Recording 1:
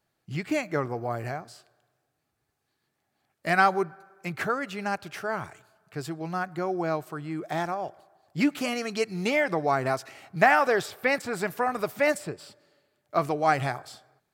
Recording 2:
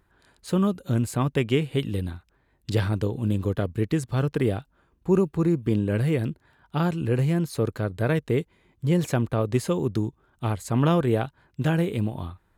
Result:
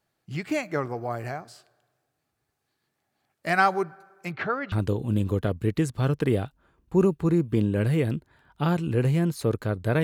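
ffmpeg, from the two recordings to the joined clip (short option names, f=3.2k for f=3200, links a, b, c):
-filter_complex "[0:a]asettb=1/sr,asplit=3[a][b][c];[a]atrim=end=4.314[d];[b]atrim=start=4.31:end=4.72,asetpts=PTS-STARTPTS,afade=t=in:d=0.004:c=qsin,afade=t=out:st=0.406:d=0.004:c=qsin,lowpass=f=4k:w=0.5412,lowpass=f=4k:w=1.3066[e];[c]atrim=start=4.716[f];[d][e]acrossfade=d=0.004:c1=hsin:c2=qsin[g];[g][f]acrossfade=d=0.004:c1=qsin:c2=hsin,apad=whole_dur=10.03,atrim=end=10.03,atrim=end=4.722[h];[1:a]atrim=start=2.858:end=8.17[i];[h][i]acrossfade=d=0.004:c1=hsin:c2=hsin"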